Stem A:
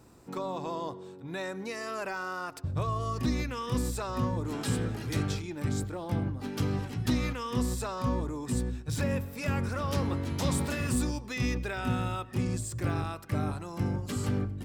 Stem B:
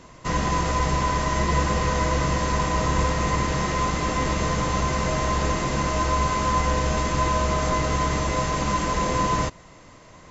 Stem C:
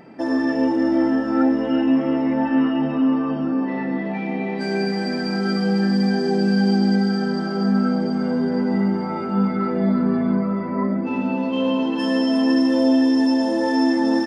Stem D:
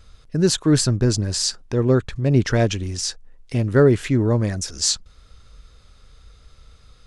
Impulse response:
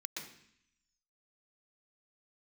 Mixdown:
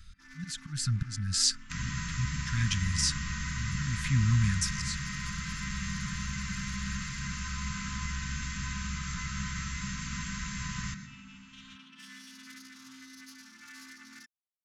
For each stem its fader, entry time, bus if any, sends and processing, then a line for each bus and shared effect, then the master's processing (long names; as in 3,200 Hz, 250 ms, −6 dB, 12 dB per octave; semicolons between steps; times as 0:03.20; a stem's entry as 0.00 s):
muted
−10.0 dB, 1.45 s, send −6 dB, no processing
−17.5 dB, 0.00 s, no send, phase distortion by the signal itself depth 0.26 ms; high-pass filter 270 Hz 6 dB per octave
−2.5 dB, 0.00 s, no send, volume swells 420 ms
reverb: on, RT60 0.65 s, pre-delay 116 ms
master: elliptic band-stop filter 190–1,400 Hz, stop band 70 dB